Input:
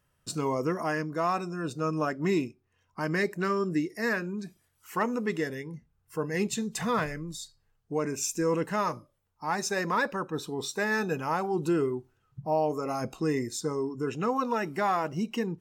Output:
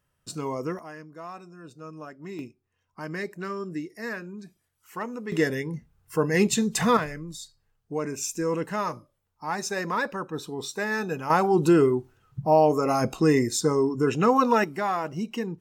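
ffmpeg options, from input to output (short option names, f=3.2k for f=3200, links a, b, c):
-af "asetnsamples=n=441:p=0,asendcmd='0.79 volume volume -12dB;2.39 volume volume -5dB;5.32 volume volume 7.5dB;6.97 volume volume 0dB;11.3 volume volume 8dB;14.64 volume volume 0dB',volume=-2dB"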